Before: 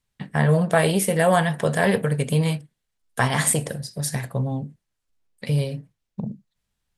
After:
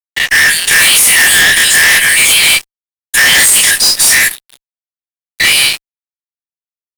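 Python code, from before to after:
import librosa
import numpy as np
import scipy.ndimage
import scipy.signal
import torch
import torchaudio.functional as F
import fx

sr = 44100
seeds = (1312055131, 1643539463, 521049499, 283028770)

y = fx.spec_dilate(x, sr, span_ms=60)
y = scipy.signal.sosfilt(scipy.signal.butter(16, 1700.0, 'highpass', fs=sr, output='sos'), y)
y = y + 0.4 * np.pad(y, (int(5.6 * sr / 1000.0), 0))[:len(y)]
y = fx.fuzz(y, sr, gain_db=41.0, gate_db=-49.0)
y = F.gain(torch.from_numpy(y), 7.5).numpy()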